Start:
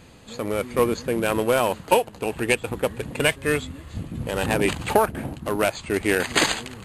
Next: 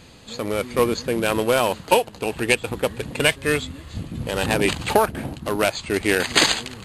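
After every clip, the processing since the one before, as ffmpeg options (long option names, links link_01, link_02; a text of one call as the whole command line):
ffmpeg -i in.wav -af "equalizer=frequency=4400:width_type=o:width=1.2:gain=6,volume=1dB" out.wav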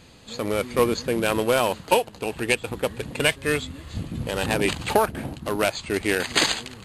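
ffmpeg -i in.wav -af "dynaudnorm=framelen=230:gausssize=3:maxgain=4dB,volume=-3.5dB" out.wav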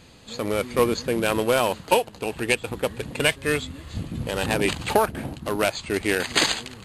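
ffmpeg -i in.wav -af anull out.wav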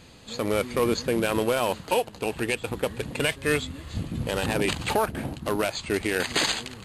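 ffmpeg -i in.wav -af "alimiter=limit=-12.5dB:level=0:latency=1:release=32" out.wav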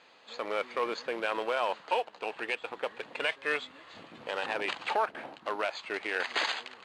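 ffmpeg -i in.wav -af "highpass=730,lowpass=5000,highshelf=frequency=3300:gain=-11.5" out.wav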